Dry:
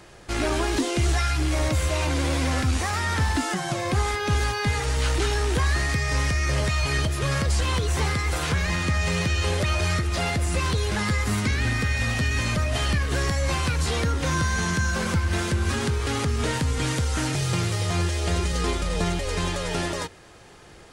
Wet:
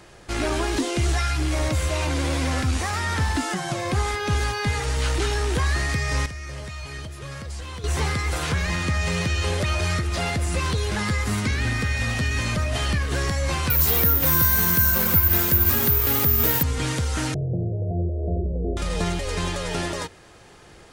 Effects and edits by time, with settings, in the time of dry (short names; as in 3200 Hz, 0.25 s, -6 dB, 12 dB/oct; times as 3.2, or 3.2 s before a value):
6.26–7.84 gain -11 dB
13.7–16.63 careless resampling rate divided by 3×, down none, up zero stuff
17.34–18.77 steep low-pass 710 Hz 96 dB/oct